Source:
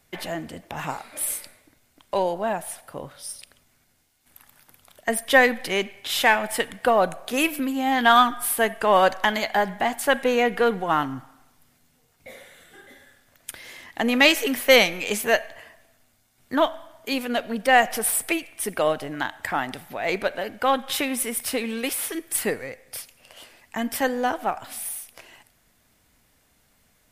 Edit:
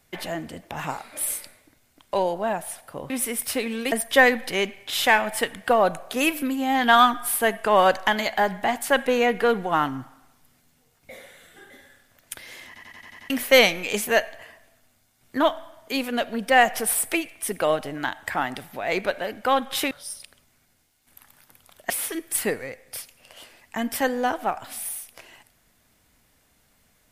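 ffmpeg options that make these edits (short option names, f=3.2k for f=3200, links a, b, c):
-filter_complex "[0:a]asplit=12[a][b][c][d][e][f][g][h][i][j][k][l];[a]atrim=end=3.102[m];[b]atrim=start=21.078:end=21.902[n];[c]atrim=start=5.088:end=13.932[o];[d]atrim=start=13.838:end=13.932[p];[e]atrim=start=13.838:end=13.932[q];[f]atrim=start=13.838:end=13.932[r];[g]atrim=start=13.838:end=13.932[s];[h]atrim=start=13.838:end=13.932[t];[i]atrim=start=13.838:end=13.932[u];[j]atrim=start=14.468:end=21.082[v];[k]atrim=start=3.098:end=5.092[w];[l]atrim=start=21.898[x];[m][n]acrossfade=d=0.004:c1=hsin:c2=hsin[y];[y][o]acrossfade=d=0.004:c1=hsin:c2=hsin[z];[z][p]acrossfade=d=0.004:c1=hsin:c2=hsin[aa];[aa][q]acrossfade=d=0.004:c1=hsin:c2=hsin[ab];[ab][r]acrossfade=d=0.004:c1=hsin:c2=hsin[ac];[ac][s]acrossfade=d=0.004:c1=hsin:c2=hsin[ad];[ad][t]acrossfade=d=0.004:c1=hsin:c2=hsin[ae];[ae][u]acrossfade=d=0.004:c1=hsin:c2=hsin[af];[af][v]acrossfade=d=0.004:c1=hsin:c2=hsin[ag];[ag][w]acrossfade=d=0.004:c1=hsin:c2=hsin[ah];[ah][x]acrossfade=d=0.004:c1=hsin:c2=hsin"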